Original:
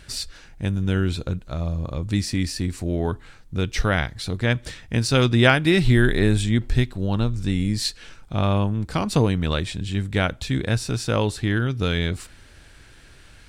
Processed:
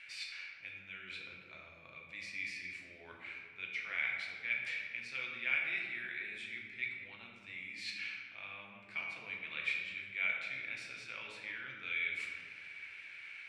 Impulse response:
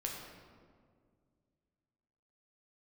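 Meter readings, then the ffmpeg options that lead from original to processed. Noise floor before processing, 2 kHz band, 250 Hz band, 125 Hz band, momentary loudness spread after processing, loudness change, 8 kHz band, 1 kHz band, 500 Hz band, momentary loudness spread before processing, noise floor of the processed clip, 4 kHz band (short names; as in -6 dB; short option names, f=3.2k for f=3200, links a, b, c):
-48 dBFS, -8.5 dB, -37.5 dB, under -40 dB, 13 LU, -16.5 dB, under -25 dB, -23.5 dB, -32.5 dB, 11 LU, -56 dBFS, -17.5 dB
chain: -filter_complex "[0:a]areverse,acompressor=threshold=-31dB:ratio=10,areverse,bandpass=f=2.3k:t=q:w=11:csg=0[a];[1:a]atrim=start_sample=2205,asetrate=48510,aresample=44100[b];[a][b]afir=irnorm=-1:irlink=0,volume=15dB"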